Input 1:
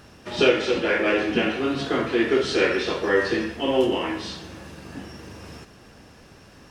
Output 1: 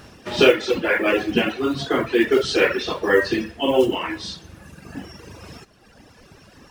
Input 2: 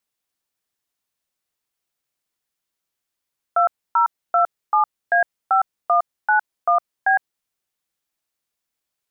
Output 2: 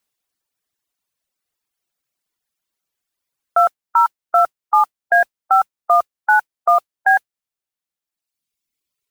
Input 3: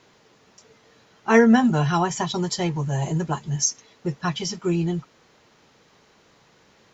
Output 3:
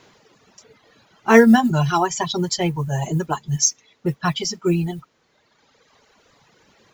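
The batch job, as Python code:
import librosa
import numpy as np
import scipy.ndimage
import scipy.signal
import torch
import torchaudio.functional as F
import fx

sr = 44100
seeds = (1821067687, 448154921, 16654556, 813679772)

y = fx.mod_noise(x, sr, seeds[0], snr_db=31)
y = fx.dereverb_blind(y, sr, rt60_s=1.9)
y = y * librosa.db_to_amplitude(4.5)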